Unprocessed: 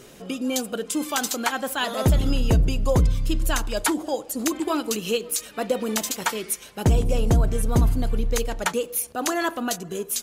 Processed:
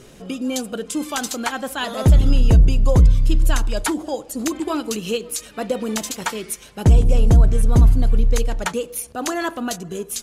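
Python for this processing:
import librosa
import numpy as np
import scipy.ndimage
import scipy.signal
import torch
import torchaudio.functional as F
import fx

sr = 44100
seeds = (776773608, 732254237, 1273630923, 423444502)

y = scipy.signal.sosfilt(scipy.signal.butter(2, 12000.0, 'lowpass', fs=sr, output='sos'), x)
y = fx.low_shelf(y, sr, hz=150.0, db=9.0)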